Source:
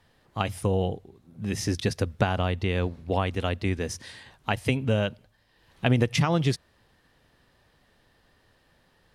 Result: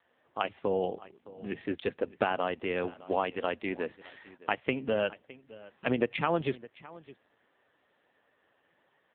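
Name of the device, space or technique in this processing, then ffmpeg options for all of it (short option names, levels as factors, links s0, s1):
satellite phone: -filter_complex "[0:a]asettb=1/sr,asplit=3[s0][s1][s2];[s0]atrim=end=1.904[s3];[s1]atrim=start=1.9:end=2.81,asetpts=PTS-STARTPTS,afade=t=in:d=0.004:c=qsin,afade=t=out:st=0.906:d=0.004:c=qsin,adynamicequalizer=threshold=0.00316:dfrequency=5000:dqfactor=1.4:tfrequency=5000:tqfactor=1.4:attack=5:release=100:ratio=0.375:range=3:mode=cutabove:tftype=bell[s4];[s2]atrim=start=2.806[s5];[s3][s4]acrossfade=d=0.004:c1=hsin:c2=qsin[s6];[s6][s5]acrossfade=d=0.004:c1=qsin:c2=hsin,highpass=310,lowpass=3100,aecho=1:1:613:0.106" -ar 8000 -c:a libopencore_amrnb -b:a 5900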